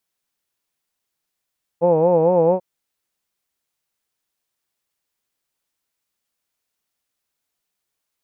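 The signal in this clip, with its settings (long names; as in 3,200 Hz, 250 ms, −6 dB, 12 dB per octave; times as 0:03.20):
vowel from formants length 0.79 s, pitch 165 Hz, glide +1 semitone, vibrato 4.4 Hz, vibrato depth 1.2 semitones, F1 510 Hz, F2 880 Hz, F3 2,500 Hz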